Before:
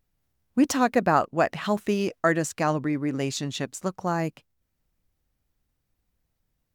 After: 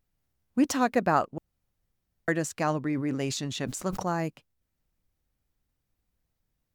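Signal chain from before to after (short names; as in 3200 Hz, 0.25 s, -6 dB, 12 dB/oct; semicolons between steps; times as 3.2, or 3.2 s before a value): 1.38–2.28 room tone; 2.83–4.16 sustainer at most 50 dB/s; gain -3 dB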